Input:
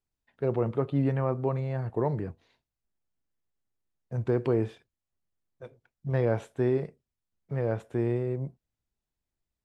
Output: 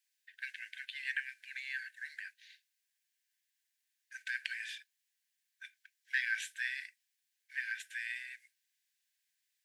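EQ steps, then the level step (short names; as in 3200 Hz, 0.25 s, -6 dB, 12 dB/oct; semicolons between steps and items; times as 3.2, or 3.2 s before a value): brick-wall FIR high-pass 1500 Hz; +11.0 dB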